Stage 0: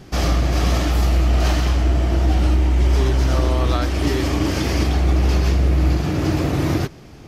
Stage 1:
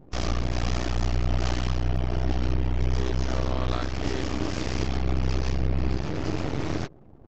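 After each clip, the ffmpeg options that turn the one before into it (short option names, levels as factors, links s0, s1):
-af "afftfilt=real='re*gte(hypot(re,im),0.01)':imag='im*gte(hypot(re,im),0.01)':win_size=1024:overlap=0.75,aresample=16000,aeval=exprs='max(val(0),0)':c=same,aresample=44100,volume=0.562"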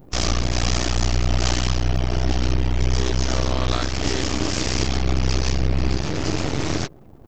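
-af "aemphasis=mode=production:type=75kf,volume=1.68"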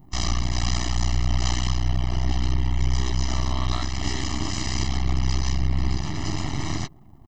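-af "aecho=1:1:1:0.98,volume=0.422"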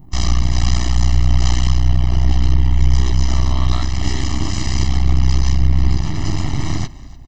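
-filter_complex "[0:a]lowshelf=f=190:g=7,asplit=4[s0][s1][s2][s3];[s1]adelay=293,afreqshift=-30,volume=0.106[s4];[s2]adelay=586,afreqshift=-60,volume=0.0339[s5];[s3]adelay=879,afreqshift=-90,volume=0.0108[s6];[s0][s4][s5][s6]amix=inputs=4:normalize=0,volume=1.41"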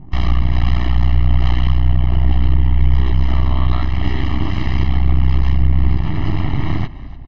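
-filter_complex "[0:a]asplit=2[s0][s1];[s1]acompressor=threshold=0.112:ratio=6,volume=1.26[s2];[s0][s2]amix=inputs=2:normalize=0,lowpass=f=3100:w=0.5412,lowpass=f=3100:w=1.3066,volume=0.75"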